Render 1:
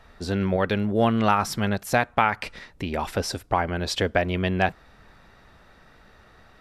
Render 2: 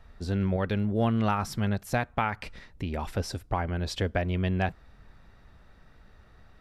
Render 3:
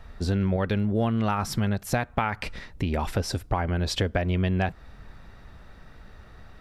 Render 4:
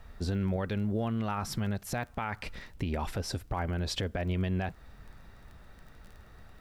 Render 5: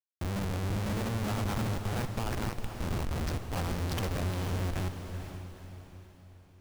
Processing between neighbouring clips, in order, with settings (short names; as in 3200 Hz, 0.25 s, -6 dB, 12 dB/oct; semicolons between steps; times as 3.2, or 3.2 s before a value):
low shelf 170 Hz +11.5 dB; gain -8 dB
compressor 3:1, threshold -30 dBFS, peak gain reduction 7.5 dB; gain +7.5 dB
limiter -17.5 dBFS, peak gain reduction 7 dB; crackle 16/s -38 dBFS; bit-crush 11-bit; gain -5 dB
reverse delay 0.181 s, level -2 dB; Schmitt trigger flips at -30.5 dBFS; diffused feedback echo 0.464 s, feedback 45%, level -8 dB